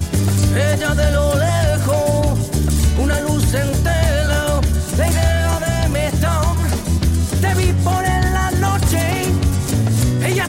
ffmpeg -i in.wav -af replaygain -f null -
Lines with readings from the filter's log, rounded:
track_gain = +2.0 dB
track_peak = 0.470